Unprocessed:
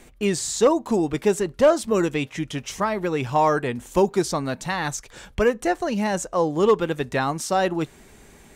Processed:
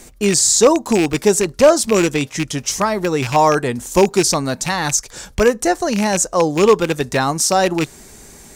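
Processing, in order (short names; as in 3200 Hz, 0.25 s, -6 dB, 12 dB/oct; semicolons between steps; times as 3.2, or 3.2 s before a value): rattling part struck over -28 dBFS, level -17 dBFS; resonant high shelf 4000 Hz +7 dB, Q 1.5; gain +6 dB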